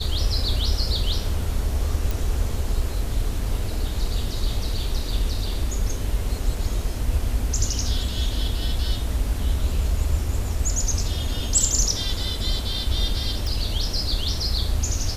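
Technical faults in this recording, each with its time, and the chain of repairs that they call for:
2.11 pop
13.47 pop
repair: de-click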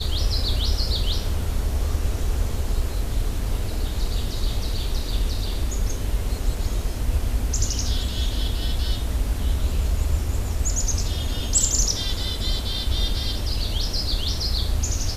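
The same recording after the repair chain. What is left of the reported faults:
none

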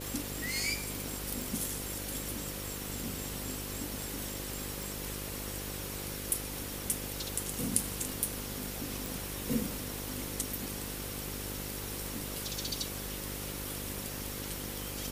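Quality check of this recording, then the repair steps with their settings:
buzz 50 Hz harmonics 11 -43 dBFS
1.42 pop
4.83 pop
9.06 pop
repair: de-click; de-hum 50 Hz, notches 11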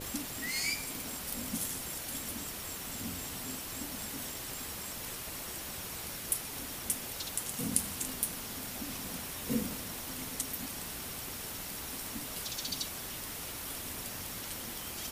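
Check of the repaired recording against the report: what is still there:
none

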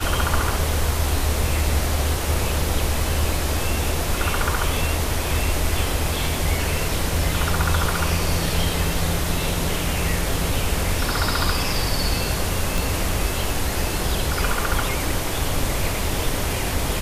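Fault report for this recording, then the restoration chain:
12.78 pop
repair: de-click

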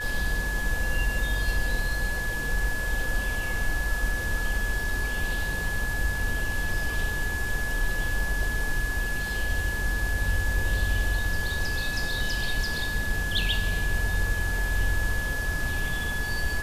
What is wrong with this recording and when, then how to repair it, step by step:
tone 1700 Hz -30 dBFS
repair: notch 1700 Hz, Q 30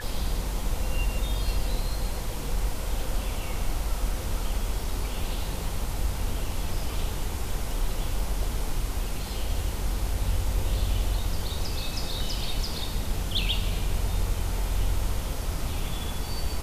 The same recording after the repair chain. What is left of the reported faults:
none

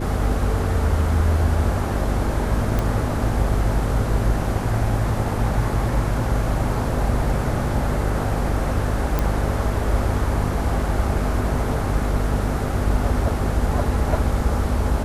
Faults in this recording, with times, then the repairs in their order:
hum 50 Hz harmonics 8 -25 dBFS
2.79 pop
9.19 pop -8 dBFS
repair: de-click; de-hum 50 Hz, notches 8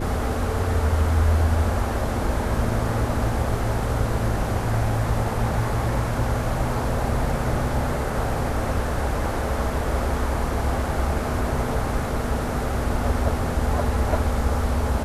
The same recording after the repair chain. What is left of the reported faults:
none

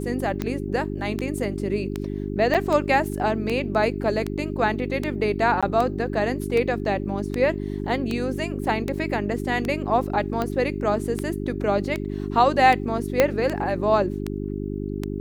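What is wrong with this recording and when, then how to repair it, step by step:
hum 50 Hz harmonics 8 -29 dBFS
tick 78 rpm -13 dBFS
2.54–2.55 gap 7.3 ms
5.61–5.63 gap 16 ms
13.2 pop -3 dBFS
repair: de-click; de-hum 50 Hz, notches 8; interpolate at 2.54, 7.3 ms; interpolate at 5.61, 16 ms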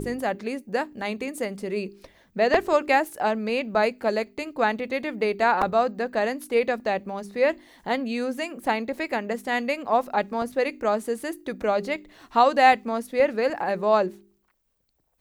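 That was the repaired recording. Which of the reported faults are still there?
13.2 pop

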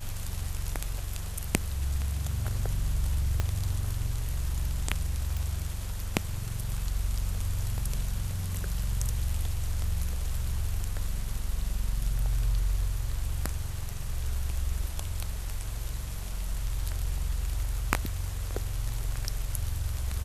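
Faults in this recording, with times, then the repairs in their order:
3.4 pop -14 dBFS
5.37 pop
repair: de-click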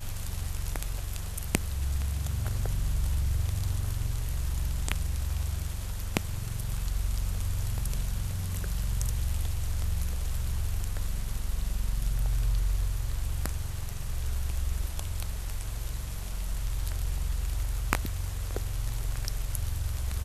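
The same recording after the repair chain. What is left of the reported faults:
3.4 pop

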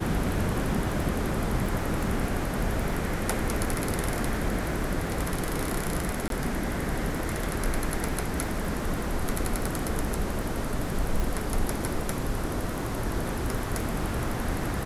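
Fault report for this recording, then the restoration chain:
crackle 31/s -35 dBFS
6.28–6.3 gap 22 ms
11.2 pop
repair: de-click; interpolate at 6.28, 22 ms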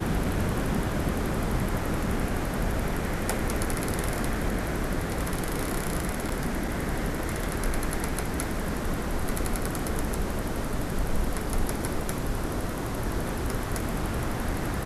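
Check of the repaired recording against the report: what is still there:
11.2 pop

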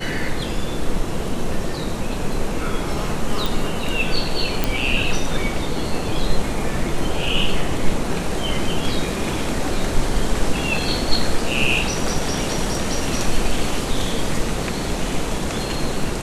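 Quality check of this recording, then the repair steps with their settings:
3.46 pop
4.64 pop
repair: de-click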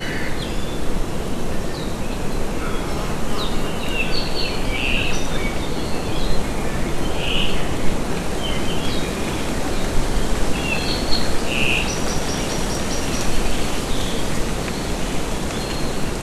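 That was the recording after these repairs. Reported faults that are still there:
none

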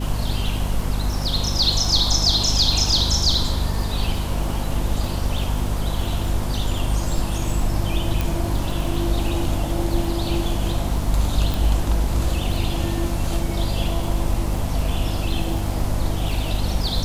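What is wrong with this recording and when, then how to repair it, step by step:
crackle 53/s -28 dBFS
hum 50 Hz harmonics 5 -25 dBFS
8.21 pop
11.54 pop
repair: de-click; de-hum 50 Hz, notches 5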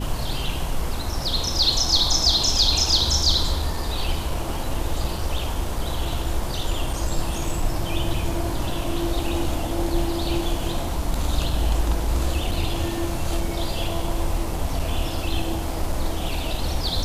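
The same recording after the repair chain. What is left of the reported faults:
11.54 pop

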